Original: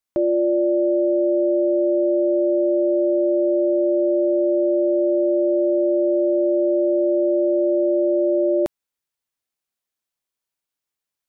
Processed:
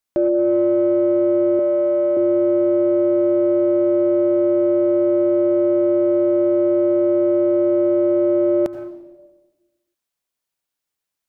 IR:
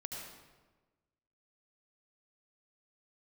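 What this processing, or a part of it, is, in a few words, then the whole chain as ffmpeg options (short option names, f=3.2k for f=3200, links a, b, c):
saturated reverb return: -filter_complex "[0:a]asplit=2[a][b];[1:a]atrim=start_sample=2205[c];[b][c]afir=irnorm=-1:irlink=0,asoftclip=type=tanh:threshold=-21.5dB,volume=-4.5dB[d];[a][d]amix=inputs=2:normalize=0,asettb=1/sr,asplit=3[e][f][g];[e]atrim=end=1.594[h];[f]atrim=start=1.59:end=2.17,asetpts=PTS-STARTPTS,afade=t=in:d=0.004:c=qsin,afade=t=out:st=0.576:d=0.004:c=qsin,lowshelf=f=390:t=q:w=1.5:g=-7[i];[g]atrim=start=2.166[j];[h][i]acrossfade=d=0.004:c1=hsin:c2=qsin[k];[k][j]acrossfade=d=0.004:c1=qsin:c2=hsin"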